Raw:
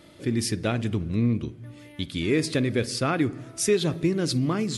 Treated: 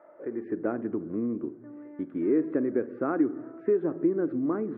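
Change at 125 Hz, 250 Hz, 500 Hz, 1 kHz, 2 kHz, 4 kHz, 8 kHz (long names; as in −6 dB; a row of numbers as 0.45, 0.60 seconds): −17.0 dB, −1.5 dB, −1.0 dB, −5.0 dB, −11.5 dB, below −40 dB, below −40 dB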